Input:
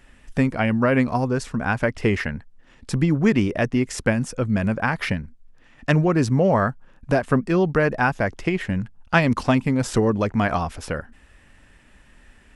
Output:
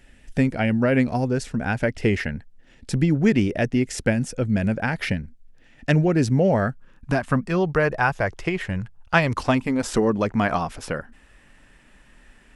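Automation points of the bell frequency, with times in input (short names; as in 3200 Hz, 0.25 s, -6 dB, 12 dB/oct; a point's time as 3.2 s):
bell -12 dB 0.48 oct
6.61 s 1100 Hz
7.67 s 240 Hz
9.27 s 240 Hz
10.26 s 77 Hz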